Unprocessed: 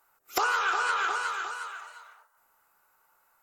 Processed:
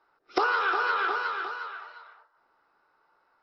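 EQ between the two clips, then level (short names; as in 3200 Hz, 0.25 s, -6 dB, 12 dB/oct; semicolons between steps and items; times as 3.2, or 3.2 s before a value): rippled Chebyshev low-pass 5400 Hz, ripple 3 dB; bell 340 Hz +11 dB 1.5 oct; 0.0 dB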